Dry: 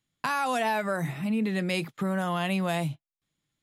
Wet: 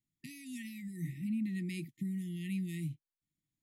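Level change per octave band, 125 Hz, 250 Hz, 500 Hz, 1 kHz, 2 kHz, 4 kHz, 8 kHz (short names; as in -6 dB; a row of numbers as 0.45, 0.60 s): -7.0 dB, -7.0 dB, -24.5 dB, under -40 dB, -18.5 dB, -17.0 dB, -10.5 dB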